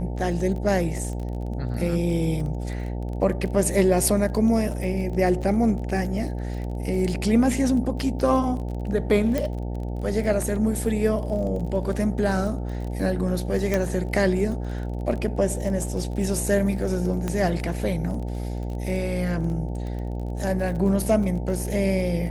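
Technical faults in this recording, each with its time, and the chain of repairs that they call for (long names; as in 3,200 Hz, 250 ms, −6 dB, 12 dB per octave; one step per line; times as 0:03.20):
mains buzz 60 Hz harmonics 15 −29 dBFS
surface crackle 28 per second −32 dBFS
0:09.38: click −12 dBFS
0:13.74: click −10 dBFS
0:17.28: click −14 dBFS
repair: click removal
hum removal 60 Hz, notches 15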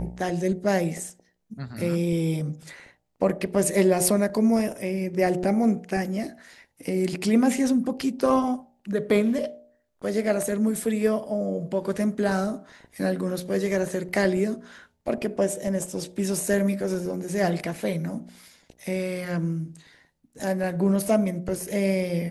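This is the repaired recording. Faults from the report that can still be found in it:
0:13.74: click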